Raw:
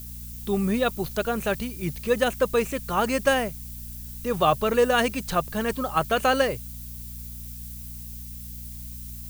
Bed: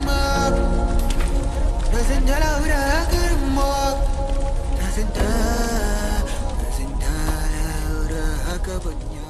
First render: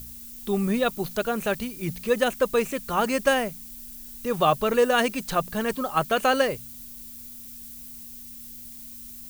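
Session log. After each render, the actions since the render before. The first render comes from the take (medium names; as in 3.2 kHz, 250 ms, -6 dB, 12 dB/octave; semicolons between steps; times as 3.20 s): de-hum 60 Hz, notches 3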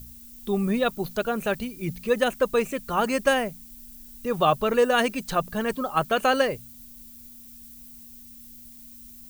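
noise reduction 6 dB, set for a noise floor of -42 dBFS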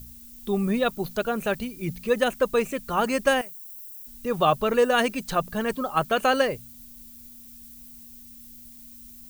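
3.41–4.07 s: pre-emphasis filter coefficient 0.9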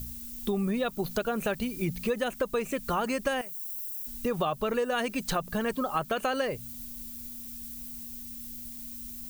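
in parallel at -3 dB: peak limiter -18.5 dBFS, peak gain reduction 10.5 dB; on the sum: compression 6:1, threshold -26 dBFS, peak gain reduction 12.5 dB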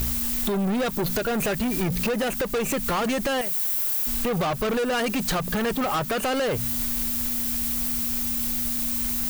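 compression 2.5:1, threshold -33 dBFS, peak gain reduction 7 dB; waveshaping leveller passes 5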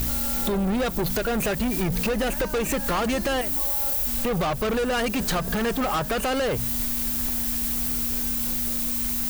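add bed -17 dB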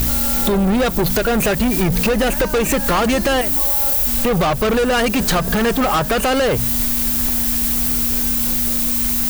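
trim +8 dB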